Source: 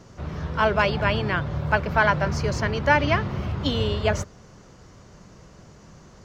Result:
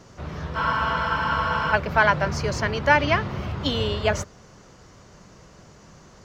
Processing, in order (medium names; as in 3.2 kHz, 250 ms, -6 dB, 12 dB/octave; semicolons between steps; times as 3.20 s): bass shelf 390 Hz -4.5 dB; spectral freeze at 0.58 s, 1.16 s; trim +2 dB